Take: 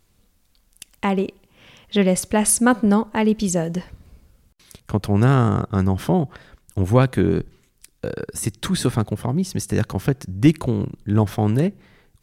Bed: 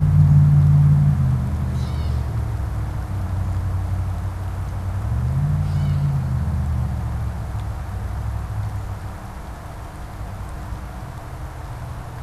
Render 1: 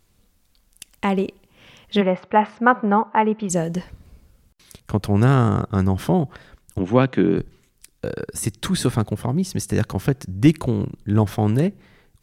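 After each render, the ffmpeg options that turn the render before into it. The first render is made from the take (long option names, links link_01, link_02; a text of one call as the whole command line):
ffmpeg -i in.wav -filter_complex "[0:a]asplit=3[link_01][link_02][link_03];[link_01]afade=type=out:start_time=2:duration=0.02[link_04];[link_02]highpass=210,equalizer=frequency=280:width_type=q:width=4:gain=-8,equalizer=frequency=870:width_type=q:width=4:gain=9,equalizer=frequency=1300:width_type=q:width=4:gain=7,lowpass=frequency=2600:width=0.5412,lowpass=frequency=2600:width=1.3066,afade=type=in:start_time=2:duration=0.02,afade=type=out:start_time=3.49:duration=0.02[link_05];[link_03]afade=type=in:start_time=3.49:duration=0.02[link_06];[link_04][link_05][link_06]amix=inputs=3:normalize=0,asplit=3[link_07][link_08][link_09];[link_07]afade=type=out:start_time=6.78:duration=0.02[link_10];[link_08]highpass=frequency=140:width=0.5412,highpass=frequency=140:width=1.3066,equalizer=frequency=290:width_type=q:width=4:gain=4,equalizer=frequency=2800:width_type=q:width=4:gain=4,equalizer=frequency=4700:width_type=q:width=4:gain=-9,lowpass=frequency=5600:width=0.5412,lowpass=frequency=5600:width=1.3066,afade=type=in:start_time=6.78:duration=0.02,afade=type=out:start_time=7.36:duration=0.02[link_11];[link_09]afade=type=in:start_time=7.36:duration=0.02[link_12];[link_10][link_11][link_12]amix=inputs=3:normalize=0" out.wav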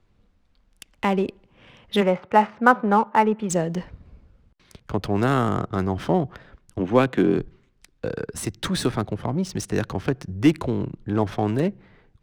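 ffmpeg -i in.wav -filter_complex "[0:a]acrossover=split=220|670|4500[link_01][link_02][link_03][link_04];[link_01]asoftclip=type=tanh:threshold=-27.5dB[link_05];[link_05][link_02][link_03][link_04]amix=inputs=4:normalize=0,adynamicsmooth=sensitivity=7.5:basefreq=2900" out.wav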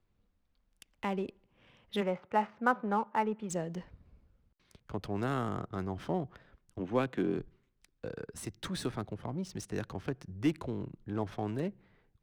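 ffmpeg -i in.wav -af "volume=-12.5dB" out.wav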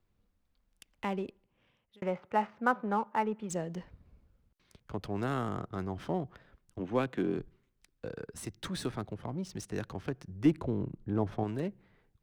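ffmpeg -i in.wav -filter_complex "[0:a]asettb=1/sr,asplit=3[link_01][link_02][link_03];[link_01]atrim=end=10.454[link_04];[link_02]atrim=start=10.45:end=11.44,asetpts=PTS-STARTPTS,afade=type=in:duration=0.004:curve=qsin,afade=type=out:start_time=0.986:duration=0.004:curve=qsin,tiltshelf=frequency=1200:gain=5[link_05];[link_03]atrim=start=11.436[link_06];[link_04][link_05]acrossfade=duration=0.004:curve1=hsin:curve2=qsin[link_07];[link_07][link_06]acrossfade=duration=0.004:curve1=qsin:curve2=hsin,asplit=2[link_08][link_09];[link_08]atrim=end=2.02,asetpts=PTS-STARTPTS,afade=type=out:start_time=1.12:duration=0.9[link_10];[link_09]atrim=start=2.02,asetpts=PTS-STARTPTS,afade=type=in:duration=0.004:curve=hsin[link_11];[link_10][link_11]concat=n=2:v=0:a=1" out.wav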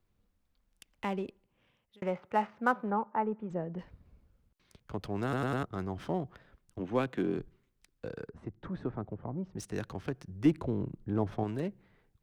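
ffmpeg -i in.wav -filter_complex "[0:a]asettb=1/sr,asplit=3[link_01][link_02][link_03];[link_01]atrim=end=2.904[link_04];[link_02]atrim=start=2.9:end=3.79,asetpts=PTS-STARTPTS,afade=type=in:duration=0.004:curve=qsin,afade=type=out:start_time=0.886:duration=0.004:curve=qsin,lowpass=1400[link_05];[link_03]atrim=start=3.786[link_06];[link_04][link_05]acrossfade=duration=0.004:curve1=hsin:curve2=qsin[link_07];[link_07][link_06]acrossfade=duration=0.004:curve1=qsin:curve2=hsin,asettb=1/sr,asplit=3[link_08][link_09][link_10];[link_08]atrim=end=8.294[link_11];[link_09]atrim=start=8.29:end=9.58,asetpts=PTS-STARTPTS,afade=type=in:duration=0.004:curve=qsin,afade=type=out:start_time=1.286:duration=0.004:curve=qsin,lowpass=1100[link_12];[link_10]atrim=start=9.576[link_13];[link_11][link_12]acrossfade=duration=0.004:curve1=hsin:curve2=qsin[link_14];[link_14][link_13]acrossfade=duration=0.004:curve1=qsin:curve2=hsin,asplit=5[link_15][link_16][link_17][link_18][link_19];[link_15]atrim=end=5.332[link_20];[link_16]atrim=start=5.228:end=5.332[link_21];[link_17]atrim=start=5.228:end=5.332[link_22];[link_18]atrim=start=5.228:end=5.332[link_23];[link_19]atrim=start=5.628[link_24];[link_20][link_21]acrossfade=duration=0.004:curve1=hsin:curve2=hsin[link_25];[link_25][link_22]acrossfade=duration=0.004:curve1=hsin:curve2=hsin[link_26];[link_26][link_23]acrossfade=duration=0.004:curve1=hsin:curve2=hsin[link_27];[link_27][link_24]acrossfade=duration=0.004:curve1=hsin:curve2=hsin" out.wav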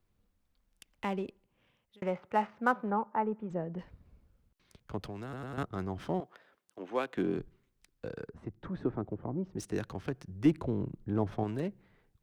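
ffmpeg -i in.wav -filter_complex "[0:a]asettb=1/sr,asplit=3[link_01][link_02][link_03];[link_01]atrim=end=5.084[link_04];[link_02]atrim=start=5.08:end=5.58,asetpts=PTS-STARTPTS,afade=type=in:duration=0.004:curve=qsin,afade=type=out:start_time=0.496:duration=0.004:curve=qsin,acrossover=split=100|1900[link_05][link_06][link_07];[link_05]acompressor=threshold=-51dB:ratio=4[link_08];[link_06]acompressor=threshold=-42dB:ratio=4[link_09];[link_07]acompressor=threshold=-58dB:ratio=4[link_10];[link_08][link_09][link_10]amix=inputs=3:normalize=0[link_11];[link_03]atrim=start=5.576[link_12];[link_04][link_11]acrossfade=duration=0.004:curve1=hsin:curve2=qsin[link_13];[link_13][link_12]acrossfade=duration=0.004:curve1=qsin:curve2=hsin,asettb=1/sr,asplit=3[link_14][link_15][link_16];[link_14]atrim=end=6.204[link_17];[link_15]atrim=start=6.2:end=7.17,asetpts=PTS-STARTPTS,afade=type=in:duration=0.004:curve=qsin,afade=type=out:start_time=0.966:duration=0.004:curve=qsin,highpass=400[link_18];[link_16]atrim=start=7.166[link_19];[link_17][link_18]acrossfade=duration=0.004:curve1=hsin:curve2=qsin[link_20];[link_20][link_19]acrossfade=duration=0.004:curve1=qsin:curve2=hsin,asettb=1/sr,asplit=3[link_21][link_22][link_23];[link_21]atrim=end=8.814[link_24];[link_22]atrim=start=8.81:end=9.78,asetpts=PTS-STARTPTS,afade=type=in:duration=0.004:curve=qsin,afade=type=out:start_time=0.966:duration=0.004:curve=qsin,equalizer=frequency=330:width_type=o:width=0.77:gain=6[link_25];[link_23]atrim=start=9.776[link_26];[link_24][link_25]acrossfade=duration=0.004:curve1=hsin:curve2=qsin[link_27];[link_27][link_26]acrossfade=duration=0.004:curve1=qsin:curve2=hsin" out.wav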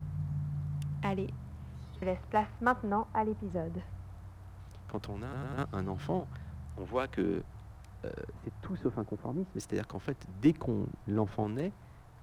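ffmpeg -i in.wav -i bed.wav -filter_complex "[1:a]volume=-23dB[link_01];[0:a][link_01]amix=inputs=2:normalize=0" out.wav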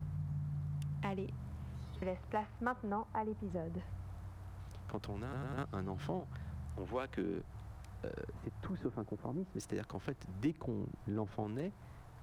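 ffmpeg -i in.wav -af "acompressor=threshold=-40dB:ratio=2" out.wav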